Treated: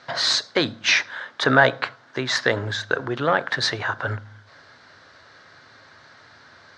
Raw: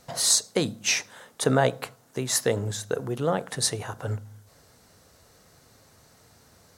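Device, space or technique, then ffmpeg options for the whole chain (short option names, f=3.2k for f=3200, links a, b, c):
overdrive pedal into a guitar cabinet: -filter_complex "[0:a]asplit=2[a][b];[b]highpass=f=720:p=1,volume=12dB,asoftclip=type=tanh:threshold=-6.5dB[c];[a][c]amix=inputs=2:normalize=0,lowpass=f=6.8k:p=1,volume=-6dB,highpass=96,equalizer=f=100:t=q:w=4:g=3,equalizer=f=190:t=q:w=4:g=-8,equalizer=f=460:t=q:w=4:g=-8,equalizer=f=760:t=q:w=4:g=-5,equalizer=f=1.6k:t=q:w=4:g=7,equalizer=f=2.7k:t=q:w=4:g=-5,lowpass=f=4.3k:w=0.5412,lowpass=f=4.3k:w=1.3066,volume=5dB"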